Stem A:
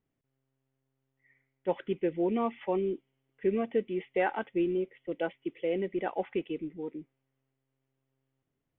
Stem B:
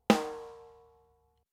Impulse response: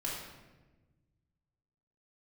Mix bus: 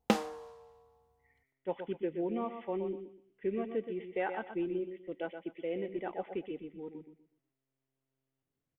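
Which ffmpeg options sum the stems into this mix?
-filter_complex "[0:a]adynamicequalizer=threshold=0.00447:dfrequency=2600:dqfactor=0.74:tfrequency=2600:tqfactor=0.74:attack=5:release=100:ratio=0.375:range=1.5:mode=cutabove:tftype=bell,volume=-6dB,asplit=2[link_01][link_02];[link_02]volume=-8.5dB[link_03];[1:a]volume=-4dB[link_04];[link_03]aecho=0:1:123|246|369|492:1|0.27|0.0729|0.0197[link_05];[link_01][link_04][link_05]amix=inputs=3:normalize=0"

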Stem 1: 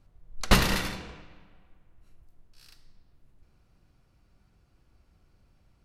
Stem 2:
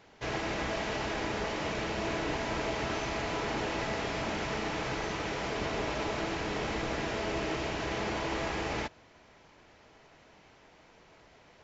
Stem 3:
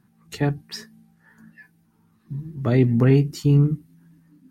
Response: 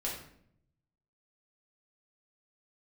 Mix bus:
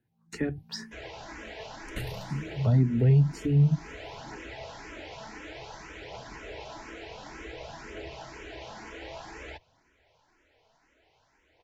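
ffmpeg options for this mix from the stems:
-filter_complex "[0:a]equalizer=frequency=120:width_type=o:width=0.77:gain=14,adelay=1450,volume=-15.5dB[link_01];[1:a]equalizer=frequency=200:width=1.5:gain=-7.5,aphaser=in_gain=1:out_gain=1:delay=4.6:decay=0.31:speed=0.55:type=triangular,adelay=700,volume=-5.5dB[link_02];[2:a]agate=range=-12dB:threshold=-47dB:ratio=16:detection=peak,highshelf=frequency=5000:gain=-10.5,volume=2.5dB[link_03];[link_01][link_02][link_03]amix=inputs=3:normalize=0,bandreject=frequency=1200:width=7.1,acrossover=split=150[link_04][link_05];[link_05]acompressor=threshold=-29dB:ratio=2.5[link_06];[link_04][link_06]amix=inputs=2:normalize=0,asplit=2[link_07][link_08];[link_08]afreqshift=2[link_09];[link_07][link_09]amix=inputs=2:normalize=1"

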